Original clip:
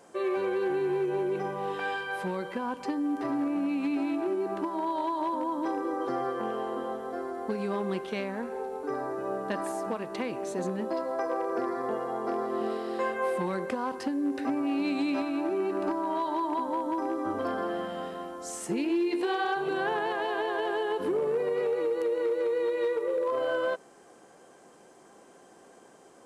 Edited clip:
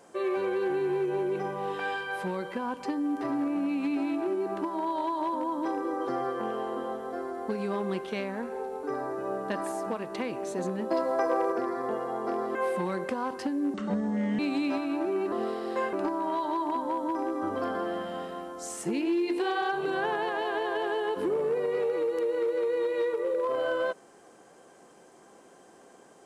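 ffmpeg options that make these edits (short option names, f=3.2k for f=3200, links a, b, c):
-filter_complex "[0:a]asplit=8[a][b][c][d][e][f][g][h];[a]atrim=end=10.912[i];[b]atrim=start=10.908:end=11.522,asetpts=PTS-STARTPTS,volume=4dB[j];[c]atrim=start=11.518:end=12.552[k];[d]atrim=start=13.158:end=14.354[l];[e]atrim=start=14.35:end=14.83,asetpts=PTS-STARTPTS,asetrate=32634,aresample=44100,atrim=end_sample=28605,asetpts=PTS-STARTPTS[m];[f]atrim=start=14.826:end=15.762[n];[g]atrim=start=12.548:end=13.162[o];[h]atrim=start=15.758[p];[i][j]acrossfade=d=0.004:c1=hsin:c2=hsin[q];[q][k]acrossfade=d=0.004:c1=hsin:c2=hsin[r];[r][l]acrossfade=d=0.004:c1=hsin:c2=hsin[s];[s][m]acrossfade=d=0.004:c1=hsin:c2=hsin[t];[t][n]acrossfade=d=0.004:c1=hsin:c2=hsin[u];[u][o]acrossfade=d=0.004:c1=hsin:c2=hsin[v];[v][p]acrossfade=d=0.004:c1=hsin:c2=hsin"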